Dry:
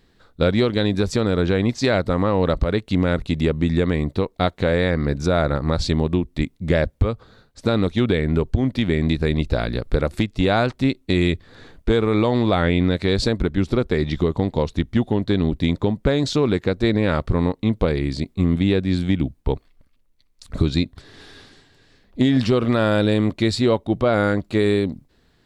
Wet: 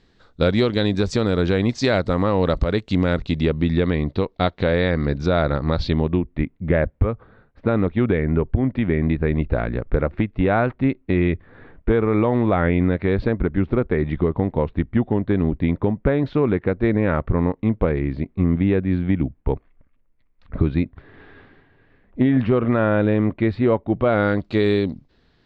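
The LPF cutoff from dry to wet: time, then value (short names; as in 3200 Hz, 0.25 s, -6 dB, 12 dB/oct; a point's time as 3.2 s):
LPF 24 dB/oct
3.04 s 7100 Hz
3.52 s 4600 Hz
5.74 s 4600 Hz
6.32 s 2300 Hz
23.9 s 2300 Hz
24.47 s 5200 Hz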